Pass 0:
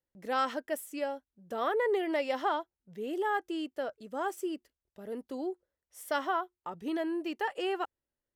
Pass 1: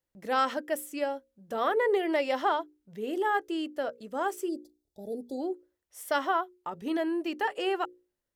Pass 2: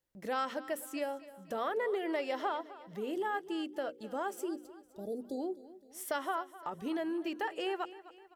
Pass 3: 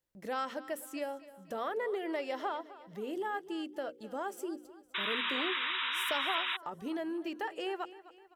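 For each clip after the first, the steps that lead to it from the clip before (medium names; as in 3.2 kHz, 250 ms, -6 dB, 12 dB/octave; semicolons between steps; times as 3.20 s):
hum notches 60/120/180/240/300/360/420/480/540 Hz; time-frequency box 4.49–5.41 s, 870–3400 Hz -29 dB; trim +3.5 dB
compression 2:1, threshold -37 dBFS, peak gain reduction 9 dB; feedback delay 257 ms, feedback 48%, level -17 dB
painted sound noise, 4.94–6.57 s, 910–3900 Hz -33 dBFS; trim -1.5 dB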